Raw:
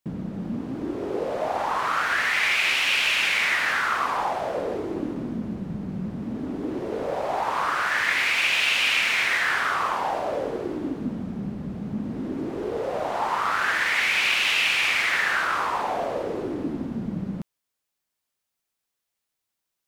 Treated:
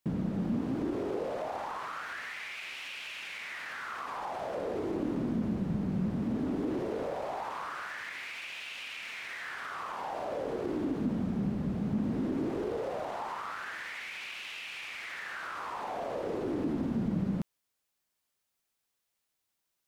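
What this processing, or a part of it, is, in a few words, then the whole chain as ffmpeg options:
de-esser from a sidechain: -filter_complex "[0:a]asplit=2[a][b];[b]highpass=f=4k:p=1,apad=whole_len=876660[c];[a][c]sidechaincompress=threshold=-49dB:ratio=4:attack=3.5:release=51"

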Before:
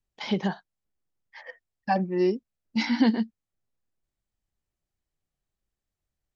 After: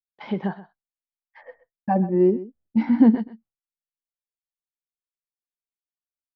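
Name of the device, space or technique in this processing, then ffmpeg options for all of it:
hearing-loss simulation: -filter_complex "[0:a]asettb=1/sr,asplit=3[a][b][c];[a]atrim=end=1.434[d];[b]atrim=start=1.43:end=3.15,asetpts=PTS-STARTPTS,afade=t=in:d=0.004:c=qsin,afade=t=out:st=1.716:d=0.004:c=qsin,tiltshelf=f=970:g=7.5[e];[c]atrim=start=3.146[f];[d][e]acrossfade=d=0.004:c1=hsin:c2=qsin[g];[g][f]acrossfade=d=0.004:c1=qsin:c2=hsin,lowpass=1.8k,aecho=1:1:128:0.158,agate=range=-33dB:threshold=-50dB:ratio=3:detection=peak"

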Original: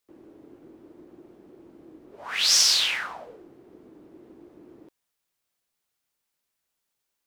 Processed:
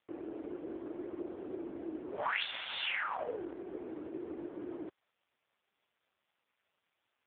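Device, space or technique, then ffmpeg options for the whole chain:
voicemail: -filter_complex "[0:a]asettb=1/sr,asplit=3[a][b][c];[a]atrim=end=1.164[d];[b]atrim=start=1.16:end=1.77,asetpts=PTS-STARTPTS,afade=t=in:d=0.004:c=qsin,afade=t=out:st=0.606:d=0.004:c=qsin,lowshelf=f=370:g=2.5[e];[c]atrim=start=1.766[f];[d][e]acrossfade=d=0.004:c1=hsin:c2=qsin[g];[g][f]acrossfade=d=0.004:c1=qsin:c2=hsin,highpass=340,lowpass=3.1k,acompressor=threshold=-41dB:ratio=6,volume=12dB" -ar 8000 -c:a libopencore_amrnb -b:a 5150

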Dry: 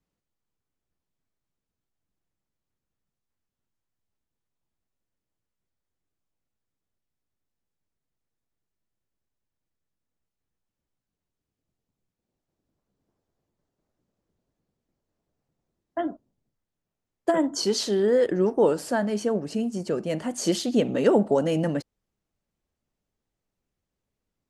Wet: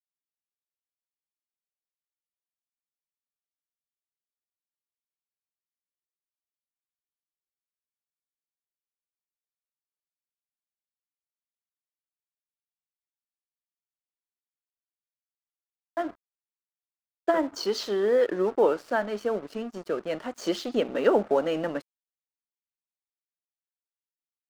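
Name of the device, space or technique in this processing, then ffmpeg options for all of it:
pocket radio on a weak battery: -af "highpass=340,lowpass=4.2k,aeval=exprs='sgn(val(0))*max(abs(val(0))-0.00531,0)':c=same,equalizer=f=1.3k:t=o:w=0.52:g=5"

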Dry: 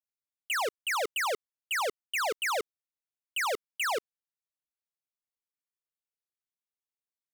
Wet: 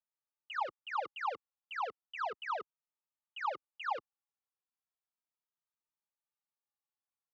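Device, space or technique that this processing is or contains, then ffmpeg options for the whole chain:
barber-pole flanger into a guitar amplifier: -filter_complex "[0:a]asplit=2[a][b];[b]adelay=2.7,afreqshift=-0.35[c];[a][c]amix=inputs=2:normalize=1,asoftclip=type=tanh:threshold=-34.5dB,highpass=100,equalizer=f=280:t=q:w=4:g=-7,equalizer=f=420:t=q:w=4:g=-5,equalizer=f=840:t=q:w=4:g=9,equalizer=f=1.2k:t=q:w=4:g=7,equalizer=f=2.1k:t=q:w=4:g=-7,equalizer=f=3.5k:t=q:w=4:g=-6,lowpass=f=3.6k:w=0.5412,lowpass=f=3.6k:w=1.3066,volume=-1.5dB"

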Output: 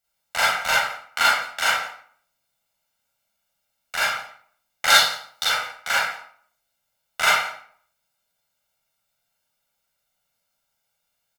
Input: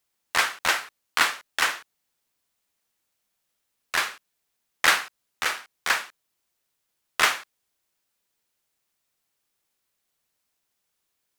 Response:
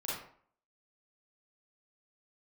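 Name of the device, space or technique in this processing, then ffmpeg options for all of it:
microphone above a desk: -filter_complex "[0:a]asettb=1/sr,asplit=3[a][b][c];[a]atrim=end=4.904[d];[b]atrim=start=4.9:end=5.45,asetpts=PTS-STARTPTS,afade=t=in:d=0.004:c=qsin,afade=t=out:st=0.546:d=0.004:c=qsin,highshelf=f=3k:t=q:w=3:g=7.5[e];[c]atrim=start=5.446[f];[d][e]acrossfade=d=0.004:c1=hsin:c2=qsin[g];[g][f]acrossfade=d=0.004:c1=qsin:c2=hsin,aecho=1:1:1.4:0.76,aecho=1:1:171:0.0794[h];[1:a]atrim=start_sample=2205[i];[h][i]afir=irnorm=-1:irlink=0,volume=-1dB"

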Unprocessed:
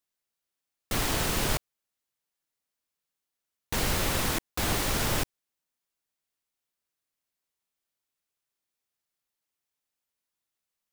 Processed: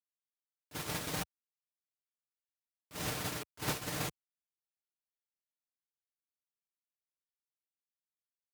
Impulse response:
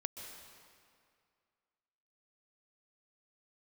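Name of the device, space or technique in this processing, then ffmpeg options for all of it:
nightcore: -af "asetrate=56448,aresample=44100,highpass=f=67:w=0.5412,highpass=f=67:w=1.3066,agate=range=-27dB:threshold=-26dB:ratio=16:detection=peak,aecho=1:1:6.6:0.48"

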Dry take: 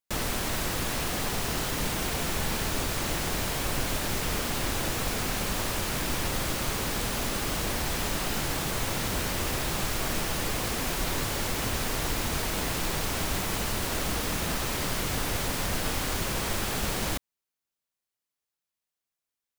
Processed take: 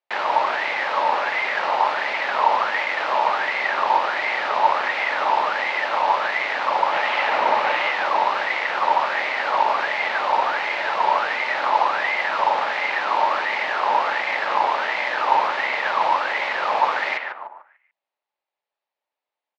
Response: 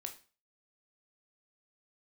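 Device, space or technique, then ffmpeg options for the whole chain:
voice changer toy: -filter_complex "[0:a]asettb=1/sr,asplit=3[a][b][c];[a]atrim=end=6.924[d];[b]atrim=start=6.92:end=7.91,asetpts=PTS-STARTPTS,afade=t=in:d=0.004:c=qsin,afade=t=out:st=0.986:d=0.004:c=qsin,equalizer=f=840:w=0.57:g=5.5[e];[c]atrim=start=7.906[f];[d][e]acrossfade=d=0.004:c1=hsin:c2=qsin[g];[g][f]acrossfade=d=0.004:c1=qsin:c2=hsin,asplit=2[h][i];[i]adelay=147,lowpass=f=1.3k:p=1,volume=-4dB,asplit=2[j][k];[k]adelay=147,lowpass=f=1.3k:p=1,volume=0.37,asplit=2[l][m];[m]adelay=147,lowpass=f=1.3k:p=1,volume=0.37,asplit=2[n][o];[o]adelay=147,lowpass=f=1.3k:p=1,volume=0.37,asplit=2[p][q];[q]adelay=147,lowpass=f=1.3k:p=1,volume=0.37[r];[h][j][l][n][p][r]amix=inputs=6:normalize=0,aeval=exprs='val(0)*sin(2*PI*1500*n/s+1500*0.4/1.4*sin(2*PI*1.4*n/s))':c=same,highpass=410,equalizer=f=590:t=q:w=4:g=9,equalizer=f=860:t=q:w=4:g=10,equalizer=f=1.5k:t=q:w=4:g=-3,equalizer=f=3.3k:t=q:w=4:g=-4,lowpass=f=3.7k:w=0.5412,lowpass=f=3.7k:w=1.3066,volume=8dB"

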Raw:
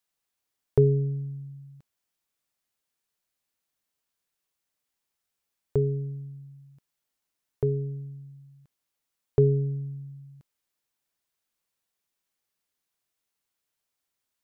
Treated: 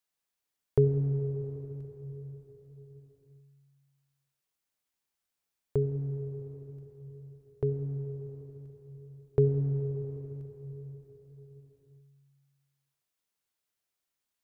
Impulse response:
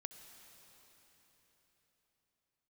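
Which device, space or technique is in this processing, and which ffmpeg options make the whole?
cathedral: -filter_complex "[1:a]atrim=start_sample=2205[a];[0:a][a]afir=irnorm=-1:irlink=0,volume=1.5dB"

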